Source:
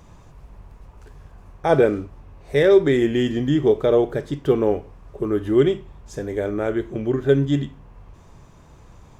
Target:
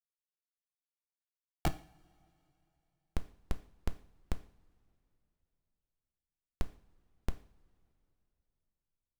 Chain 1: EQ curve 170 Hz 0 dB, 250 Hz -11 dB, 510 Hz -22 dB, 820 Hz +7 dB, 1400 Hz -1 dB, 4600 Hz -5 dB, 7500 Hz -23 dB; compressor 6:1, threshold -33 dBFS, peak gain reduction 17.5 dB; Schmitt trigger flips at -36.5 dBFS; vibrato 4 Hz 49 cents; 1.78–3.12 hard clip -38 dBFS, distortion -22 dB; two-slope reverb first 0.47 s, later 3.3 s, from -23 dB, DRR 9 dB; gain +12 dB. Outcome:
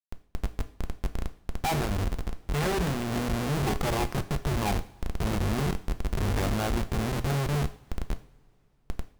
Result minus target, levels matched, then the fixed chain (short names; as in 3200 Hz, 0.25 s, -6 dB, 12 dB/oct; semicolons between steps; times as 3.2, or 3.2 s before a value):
Schmitt trigger: distortion -31 dB
EQ curve 170 Hz 0 dB, 250 Hz -11 dB, 510 Hz -22 dB, 820 Hz +7 dB, 1400 Hz -1 dB, 4600 Hz -5 dB, 7500 Hz -23 dB; compressor 6:1, threshold -33 dBFS, peak gain reduction 17.5 dB; Schmitt trigger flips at -26 dBFS; vibrato 4 Hz 49 cents; 1.78–3.12 hard clip -38 dBFS, distortion -115 dB; two-slope reverb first 0.47 s, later 3.3 s, from -23 dB, DRR 9 dB; gain +12 dB